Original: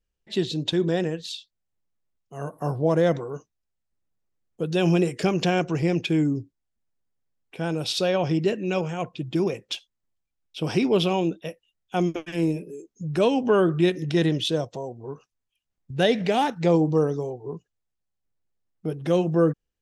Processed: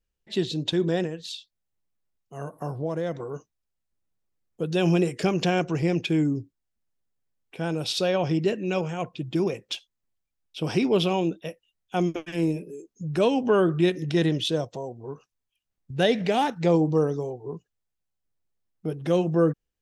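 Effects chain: 1.05–3.2 compressor 2:1, threshold -30 dBFS, peak gain reduction 8 dB; gain -1 dB

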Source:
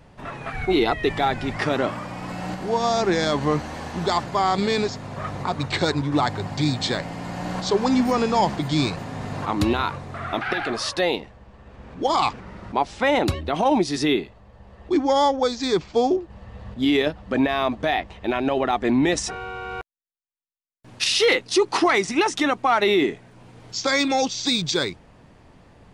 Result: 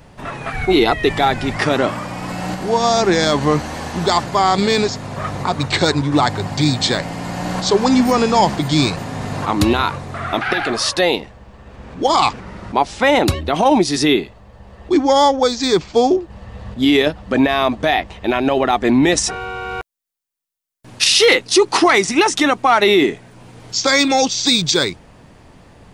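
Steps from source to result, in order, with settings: high shelf 6100 Hz +7 dB; gain +6 dB

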